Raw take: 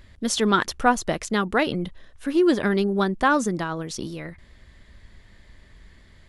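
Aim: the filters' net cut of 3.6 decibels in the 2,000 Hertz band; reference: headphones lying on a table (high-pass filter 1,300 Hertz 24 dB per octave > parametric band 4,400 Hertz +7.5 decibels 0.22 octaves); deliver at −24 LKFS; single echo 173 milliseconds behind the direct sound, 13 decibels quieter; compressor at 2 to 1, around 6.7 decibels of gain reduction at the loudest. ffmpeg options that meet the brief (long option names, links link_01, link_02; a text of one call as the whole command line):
ffmpeg -i in.wav -af "equalizer=frequency=2000:width_type=o:gain=-4,acompressor=threshold=-27dB:ratio=2,highpass=frequency=1300:width=0.5412,highpass=frequency=1300:width=1.3066,equalizer=frequency=4400:width_type=o:width=0.22:gain=7.5,aecho=1:1:173:0.224,volume=11dB" out.wav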